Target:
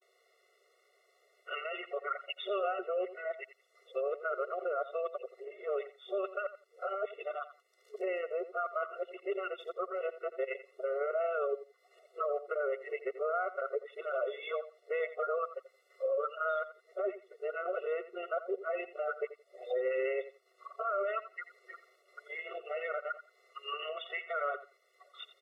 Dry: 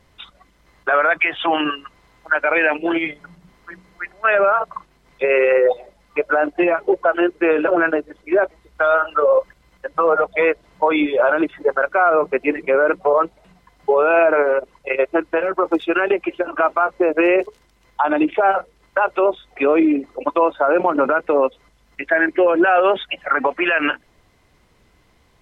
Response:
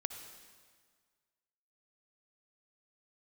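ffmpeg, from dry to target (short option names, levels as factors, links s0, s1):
-af "areverse,acompressor=threshold=0.0251:ratio=2,aecho=1:1:86|172:0.2|0.0359,afftfilt=real='re*eq(mod(floor(b*sr/1024/370),2),1)':imag='im*eq(mod(floor(b*sr/1024/370),2),1)':win_size=1024:overlap=0.75,volume=0.447"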